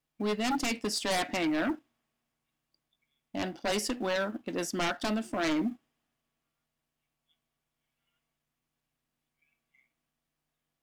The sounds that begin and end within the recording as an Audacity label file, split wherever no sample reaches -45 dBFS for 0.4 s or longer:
3.340000	5.750000	sound